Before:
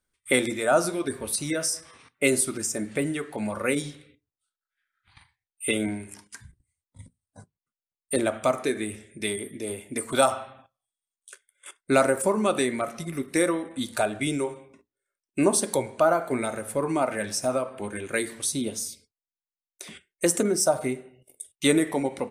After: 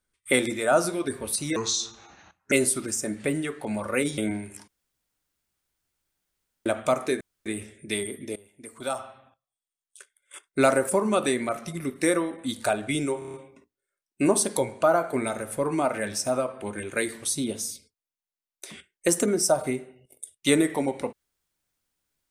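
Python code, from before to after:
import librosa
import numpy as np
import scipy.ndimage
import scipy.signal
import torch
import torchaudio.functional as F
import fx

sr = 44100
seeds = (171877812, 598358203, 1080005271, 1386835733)

y = fx.edit(x, sr, fx.speed_span(start_s=1.56, length_s=0.67, speed=0.7),
    fx.cut(start_s=3.89, length_s=1.86),
    fx.room_tone_fill(start_s=6.25, length_s=1.98),
    fx.insert_room_tone(at_s=8.78, length_s=0.25),
    fx.fade_in_from(start_s=9.68, length_s=2.1, floor_db=-21.0),
    fx.stutter(start_s=14.51, slice_s=0.03, count=6), tone=tone)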